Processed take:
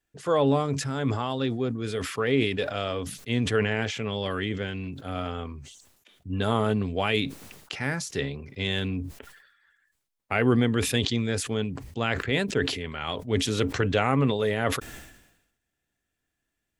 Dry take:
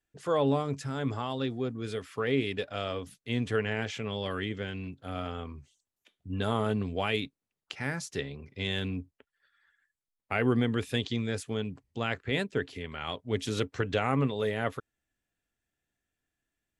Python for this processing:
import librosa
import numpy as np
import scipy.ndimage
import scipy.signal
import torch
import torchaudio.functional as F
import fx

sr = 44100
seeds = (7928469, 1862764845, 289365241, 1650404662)

y = fx.sustainer(x, sr, db_per_s=63.0)
y = F.gain(torch.from_numpy(y), 4.0).numpy()